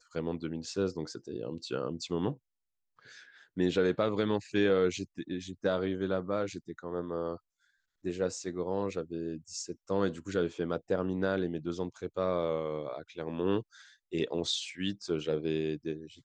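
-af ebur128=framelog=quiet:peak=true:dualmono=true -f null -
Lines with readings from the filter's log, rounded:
Integrated loudness:
  I:         -30.5 LUFS
  Threshold: -40.8 LUFS
Loudness range:
  LRA:         5.6 LU
  Threshold: -50.8 LUFS
  LRA low:   -33.8 LUFS
  LRA high:  -28.2 LUFS
True peak:
  Peak:      -14.8 dBFS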